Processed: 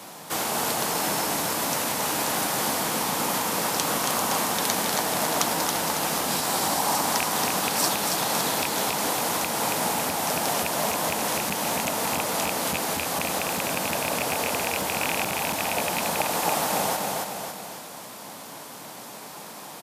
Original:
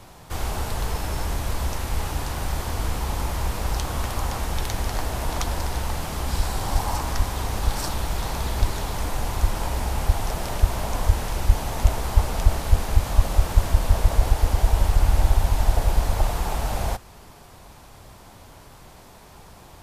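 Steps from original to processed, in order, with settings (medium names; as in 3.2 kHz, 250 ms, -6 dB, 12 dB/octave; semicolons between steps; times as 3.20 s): rattle on loud lows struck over -15 dBFS, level -14 dBFS; treble shelf 6.2 kHz +7 dB; on a send: feedback delay 276 ms, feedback 48%, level -4.5 dB; on the sum: hard clipper -6 dBFS, distortion -22 dB; in parallel at +2 dB: compression, threshold -23 dBFS, peak gain reduction 13.5 dB; on the sum: high-pass 180 Hz 24 dB/octave; band-stop 380 Hz, Q 12; trim -1.5 dB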